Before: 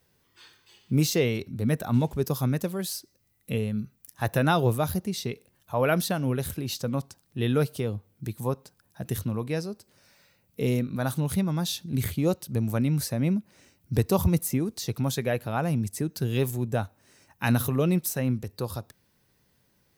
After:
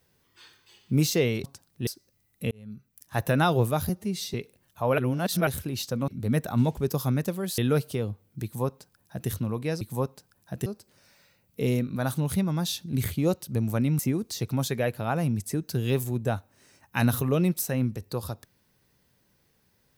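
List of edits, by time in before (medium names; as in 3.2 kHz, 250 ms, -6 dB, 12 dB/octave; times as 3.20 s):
1.44–2.94 s: swap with 7.00–7.43 s
3.58–4.26 s: fade in
4.96–5.26 s: stretch 1.5×
5.90–6.39 s: reverse
8.29–9.14 s: copy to 9.66 s
12.99–14.46 s: delete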